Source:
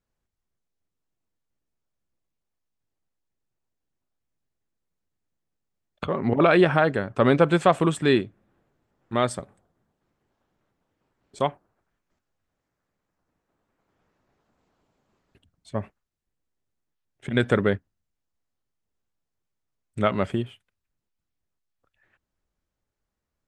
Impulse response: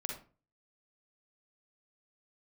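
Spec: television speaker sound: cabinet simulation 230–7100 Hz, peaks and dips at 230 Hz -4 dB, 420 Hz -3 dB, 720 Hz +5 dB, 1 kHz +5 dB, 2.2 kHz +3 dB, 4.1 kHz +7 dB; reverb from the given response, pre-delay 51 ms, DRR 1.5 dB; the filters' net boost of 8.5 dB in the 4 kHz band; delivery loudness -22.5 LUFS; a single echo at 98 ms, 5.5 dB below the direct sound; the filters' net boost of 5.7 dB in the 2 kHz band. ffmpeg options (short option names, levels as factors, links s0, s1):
-filter_complex "[0:a]equalizer=f=2000:t=o:g=4.5,equalizer=f=4000:t=o:g=5,aecho=1:1:98:0.531,asplit=2[s0][s1];[1:a]atrim=start_sample=2205,adelay=51[s2];[s1][s2]afir=irnorm=-1:irlink=0,volume=0.794[s3];[s0][s3]amix=inputs=2:normalize=0,highpass=f=230:w=0.5412,highpass=f=230:w=1.3066,equalizer=f=230:t=q:w=4:g=-4,equalizer=f=420:t=q:w=4:g=-3,equalizer=f=720:t=q:w=4:g=5,equalizer=f=1000:t=q:w=4:g=5,equalizer=f=2200:t=q:w=4:g=3,equalizer=f=4100:t=q:w=4:g=7,lowpass=f=7100:w=0.5412,lowpass=f=7100:w=1.3066,volume=0.596"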